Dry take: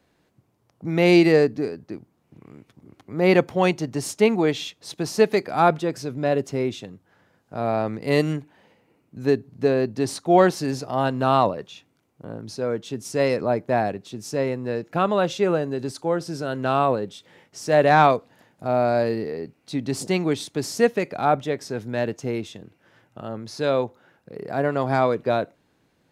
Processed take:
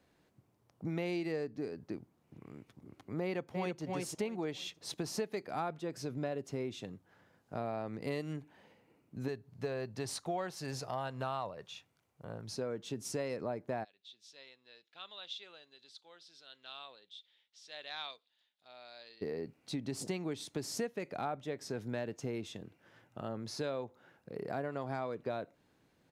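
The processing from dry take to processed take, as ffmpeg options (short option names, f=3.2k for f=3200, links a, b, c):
-filter_complex "[0:a]asplit=2[a][b];[b]afade=t=in:st=3.22:d=0.01,afade=t=out:st=3.82:d=0.01,aecho=0:1:320|640|960:0.473151|0.118288|0.029572[c];[a][c]amix=inputs=2:normalize=0,asettb=1/sr,asplit=3[d][e][f];[d]atrim=end=9.284[g];[e]atrim=start=9.28:end=12.52,asetpts=PTS-STARTPTS,afade=t=in:d=0.004:c=qsin,afade=t=out:st=3.236:d=0.004:c=qsin,equalizer=f=280:w=1.1:g=-10[h];[f]atrim=start=12.516[i];[g][h]acrossfade=d=0.004:c1=hsin:c2=qsin[j];[j][i]acrossfade=d=0.004:c1=qsin:c2=hsin,asplit=3[k][l][m];[k]afade=t=out:st=13.83:d=0.02[n];[l]bandpass=f=3.6k:t=q:w=5.4,afade=t=in:st=13.83:d=0.02,afade=t=out:st=19.21:d=0.02[o];[m]afade=t=in:st=19.21:d=0.02[p];[n][o][p]amix=inputs=3:normalize=0,acompressor=threshold=-29dB:ratio=6,volume=-5.5dB"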